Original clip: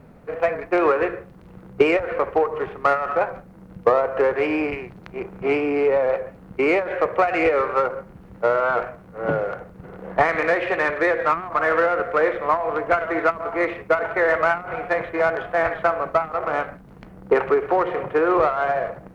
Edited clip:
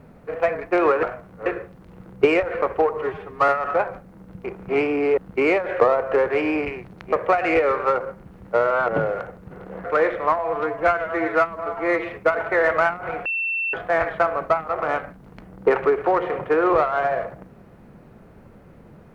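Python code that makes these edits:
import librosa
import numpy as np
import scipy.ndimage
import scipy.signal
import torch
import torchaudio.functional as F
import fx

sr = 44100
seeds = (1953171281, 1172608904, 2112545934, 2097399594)

y = fx.edit(x, sr, fx.stretch_span(start_s=2.59, length_s=0.31, factor=1.5),
    fx.move(start_s=3.86, length_s=1.32, to_s=7.02),
    fx.cut(start_s=5.91, length_s=0.48),
    fx.move(start_s=8.78, length_s=0.43, to_s=1.03),
    fx.cut(start_s=10.17, length_s=1.89),
    fx.stretch_span(start_s=12.6, length_s=1.14, factor=1.5),
    fx.bleep(start_s=14.9, length_s=0.48, hz=2690.0, db=-21.5), tone=tone)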